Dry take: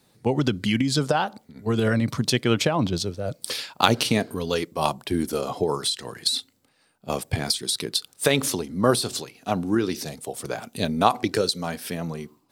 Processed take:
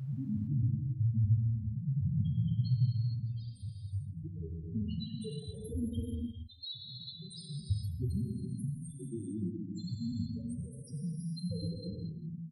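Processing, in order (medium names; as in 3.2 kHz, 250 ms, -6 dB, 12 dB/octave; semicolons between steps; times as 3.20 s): slices played last to first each 125 ms, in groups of 8; peaking EQ 11 kHz +6.5 dB 0.37 oct; level rider gain up to 11.5 dB; amplifier tone stack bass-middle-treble 10-0-1; loudest bins only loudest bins 2; wow and flutter 23 cents; on a send: delay 164 ms -17.5 dB; on the sum: gated-style reverb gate 490 ms flat, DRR -1 dB; trim +4 dB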